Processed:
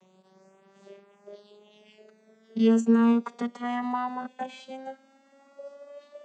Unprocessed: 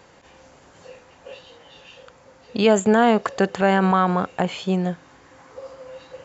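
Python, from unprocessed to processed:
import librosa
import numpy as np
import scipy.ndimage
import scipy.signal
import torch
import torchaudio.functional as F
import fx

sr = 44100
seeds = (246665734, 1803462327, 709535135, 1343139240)

y = fx.vocoder_glide(x, sr, note=54, semitones=8)
y = fx.high_shelf(y, sr, hz=3200.0, db=9.0)
y = y + 0.88 * np.pad(y, (int(5.1 * sr / 1000.0), 0))[:len(y)]
y = F.gain(torch.from_numpy(y), -8.5).numpy()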